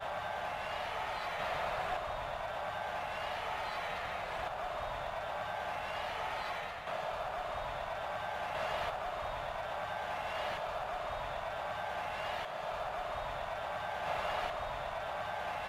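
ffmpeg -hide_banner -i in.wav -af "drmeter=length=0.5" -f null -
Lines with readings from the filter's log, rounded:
Channel 1: DR: 10.0
Overall DR: 10.0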